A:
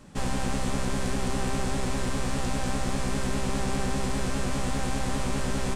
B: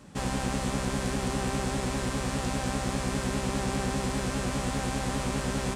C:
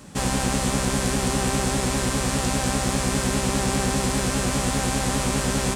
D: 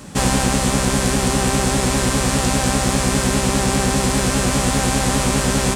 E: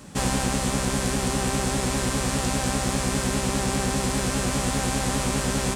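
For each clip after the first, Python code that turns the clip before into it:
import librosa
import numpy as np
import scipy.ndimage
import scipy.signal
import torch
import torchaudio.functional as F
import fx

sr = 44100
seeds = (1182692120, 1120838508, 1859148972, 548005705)

y1 = scipy.signal.sosfilt(scipy.signal.butter(2, 46.0, 'highpass', fs=sr, output='sos'), x)
y2 = fx.high_shelf(y1, sr, hz=5400.0, db=8.0)
y2 = y2 * librosa.db_to_amplitude(6.0)
y3 = fx.rider(y2, sr, range_db=10, speed_s=0.5)
y3 = y3 * librosa.db_to_amplitude(5.5)
y4 = fx.dmg_crackle(y3, sr, seeds[0], per_s=100.0, level_db=-44.0)
y4 = y4 * librosa.db_to_amplitude(-7.0)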